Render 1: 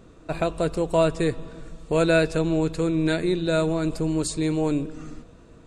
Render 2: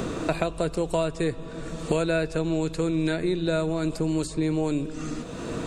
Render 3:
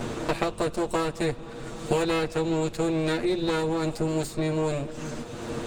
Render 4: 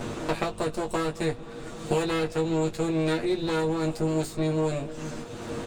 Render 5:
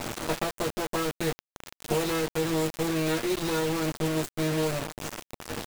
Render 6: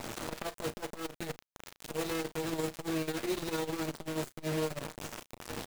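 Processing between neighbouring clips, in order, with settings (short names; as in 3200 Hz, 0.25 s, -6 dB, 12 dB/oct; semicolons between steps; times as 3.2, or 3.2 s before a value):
three-band squash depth 100%; gain -3 dB
minimum comb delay 8.5 ms
doubler 19 ms -7.5 dB; gain -2 dB
bit-crush 5-bit; gain -2 dB
doubler 34 ms -13 dB; core saturation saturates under 410 Hz; gain -4.5 dB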